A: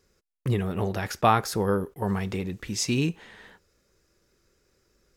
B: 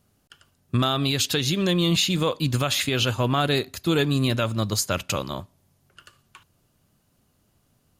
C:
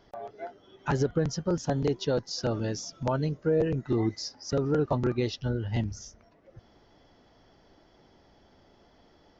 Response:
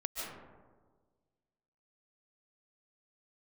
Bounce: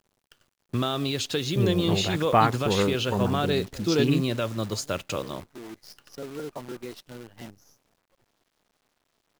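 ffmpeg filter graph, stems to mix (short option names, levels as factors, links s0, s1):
-filter_complex "[0:a]afwtdn=0.0224,adelay=1100,volume=1.06[s0];[1:a]highpass=f=48:p=1,equalizer=f=420:w=1.1:g=6,volume=0.501,asplit=2[s1][s2];[2:a]highpass=200,acontrast=39,adelay=1650,volume=0.188[s3];[s2]apad=whole_len=487132[s4];[s3][s4]sidechaincompress=threshold=0.0158:ratio=10:attack=39:release=944[s5];[s0][s1][s5]amix=inputs=3:normalize=0,lowpass=7500,acrusher=bits=8:dc=4:mix=0:aa=0.000001"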